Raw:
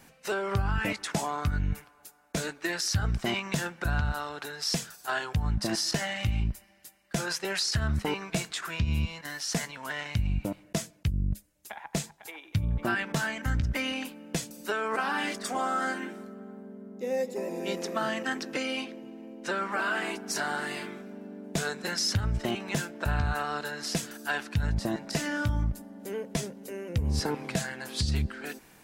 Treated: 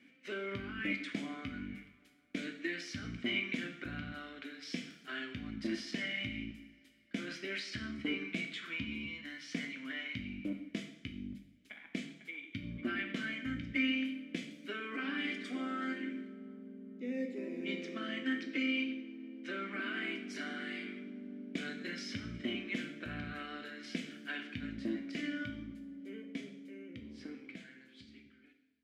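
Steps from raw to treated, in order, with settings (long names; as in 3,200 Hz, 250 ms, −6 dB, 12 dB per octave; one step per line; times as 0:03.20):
fade-out on the ending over 4.30 s
formant filter i
parametric band 940 Hz +11 dB 1.8 octaves
convolution reverb, pre-delay 3 ms, DRR 3.5 dB
level +2.5 dB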